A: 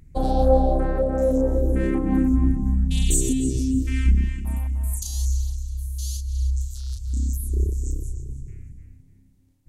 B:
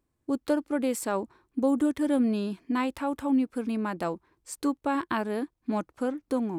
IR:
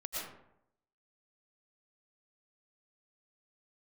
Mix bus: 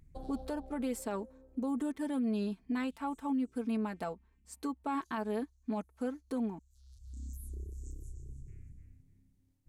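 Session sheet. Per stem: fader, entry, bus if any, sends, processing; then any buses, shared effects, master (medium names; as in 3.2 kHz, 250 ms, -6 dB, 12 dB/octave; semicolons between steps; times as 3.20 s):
-11.0 dB, 0.00 s, no send, compression 3:1, threshold -31 dBFS, peak gain reduction 14.5 dB; auto duck -24 dB, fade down 1.95 s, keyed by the second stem
-3.0 dB, 0.00 s, no send, peaking EQ 800 Hz +2.5 dB 0.26 oct; comb 4.5 ms, depth 62%; upward expansion 1.5:1, over -41 dBFS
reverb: none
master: peak limiter -27 dBFS, peak gain reduction 10.5 dB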